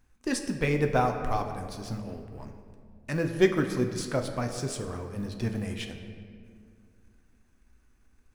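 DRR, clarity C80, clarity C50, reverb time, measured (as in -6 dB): 4.5 dB, 8.5 dB, 7.5 dB, 2.2 s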